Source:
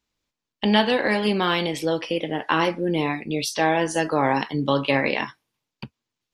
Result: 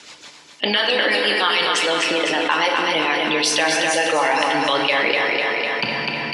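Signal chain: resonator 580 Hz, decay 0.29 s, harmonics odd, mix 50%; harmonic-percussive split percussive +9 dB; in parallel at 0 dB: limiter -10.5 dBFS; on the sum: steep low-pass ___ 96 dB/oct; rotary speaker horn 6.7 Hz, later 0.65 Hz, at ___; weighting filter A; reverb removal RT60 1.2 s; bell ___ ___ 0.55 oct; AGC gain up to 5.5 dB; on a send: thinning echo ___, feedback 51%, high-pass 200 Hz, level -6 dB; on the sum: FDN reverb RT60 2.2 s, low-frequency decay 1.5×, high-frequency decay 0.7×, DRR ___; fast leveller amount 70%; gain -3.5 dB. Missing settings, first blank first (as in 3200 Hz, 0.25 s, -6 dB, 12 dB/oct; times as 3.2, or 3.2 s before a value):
11000 Hz, 2.94, 280 Hz, -2.5 dB, 0.251 s, 5 dB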